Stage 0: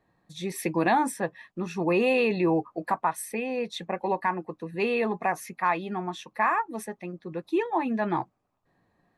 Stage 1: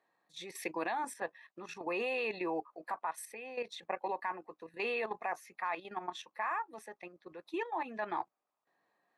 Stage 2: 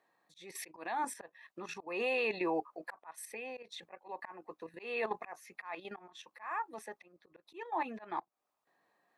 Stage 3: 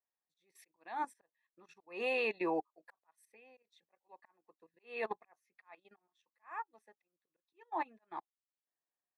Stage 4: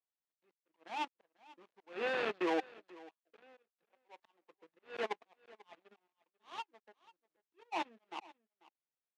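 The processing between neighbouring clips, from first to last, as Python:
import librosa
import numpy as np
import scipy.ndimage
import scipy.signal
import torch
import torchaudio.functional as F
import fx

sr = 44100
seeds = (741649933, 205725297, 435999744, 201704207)

y1 = scipy.signal.sosfilt(scipy.signal.bessel(2, 620.0, 'highpass', norm='mag', fs=sr, output='sos'), x)
y1 = fx.high_shelf(y1, sr, hz=9600.0, db=-9.5)
y1 = fx.level_steps(y1, sr, step_db=11)
y1 = F.gain(torch.from_numpy(y1), -1.5).numpy()
y2 = fx.auto_swell(y1, sr, attack_ms=258.0)
y2 = F.gain(torch.from_numpy(y2), 2.5).numpy()
y3 = fx.upward_expand(y2, sr, threshold_db=-49.0, expansion=2.5)
y4 = fx.dead_time(y3, sr, dead_ms=0.27)
y4 = fx.bandpass_edges(y4, sr, low_hz=230.0, high_hz=3500.0)
y4 = y4 + 10.0 ** (-21.0 / 20.0) * np.pad(y4, (int(491 * sr / 1000.0), 0))[:len(y4)]
y4 = F.gain(torch.from_numpy(y4), 2.5).numpy()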